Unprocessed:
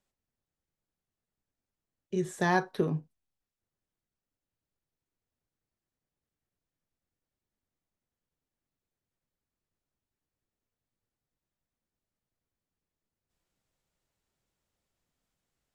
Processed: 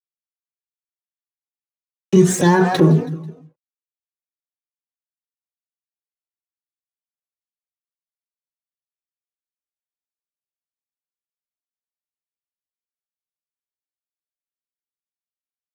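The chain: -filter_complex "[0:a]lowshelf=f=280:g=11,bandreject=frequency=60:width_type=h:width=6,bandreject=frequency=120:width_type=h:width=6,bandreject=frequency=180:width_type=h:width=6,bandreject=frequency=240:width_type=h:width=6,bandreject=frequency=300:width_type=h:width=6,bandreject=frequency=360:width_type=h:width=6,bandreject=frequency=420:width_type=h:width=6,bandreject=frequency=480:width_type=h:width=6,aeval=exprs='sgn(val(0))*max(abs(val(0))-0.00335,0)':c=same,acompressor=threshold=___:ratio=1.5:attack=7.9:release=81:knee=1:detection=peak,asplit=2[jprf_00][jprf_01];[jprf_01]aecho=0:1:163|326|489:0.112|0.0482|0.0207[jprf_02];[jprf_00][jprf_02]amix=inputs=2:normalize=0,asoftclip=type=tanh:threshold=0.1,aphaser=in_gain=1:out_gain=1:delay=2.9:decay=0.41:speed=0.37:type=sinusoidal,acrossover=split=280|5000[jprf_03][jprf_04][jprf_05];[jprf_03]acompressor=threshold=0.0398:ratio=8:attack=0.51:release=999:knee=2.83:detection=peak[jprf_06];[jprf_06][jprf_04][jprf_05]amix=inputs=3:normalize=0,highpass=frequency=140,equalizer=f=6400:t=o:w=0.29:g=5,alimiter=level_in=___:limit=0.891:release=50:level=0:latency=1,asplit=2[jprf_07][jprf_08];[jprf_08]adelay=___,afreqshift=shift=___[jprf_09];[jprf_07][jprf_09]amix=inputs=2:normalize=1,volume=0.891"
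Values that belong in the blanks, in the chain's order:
0.0178, 22.4, 3.1, 2.8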